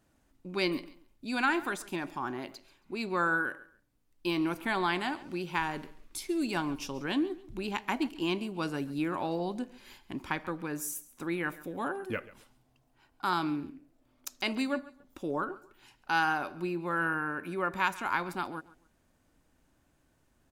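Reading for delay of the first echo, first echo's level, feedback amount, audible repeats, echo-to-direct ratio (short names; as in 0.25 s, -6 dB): 0.137 s, -19.0 dB, 25%, 2, -18.5 dB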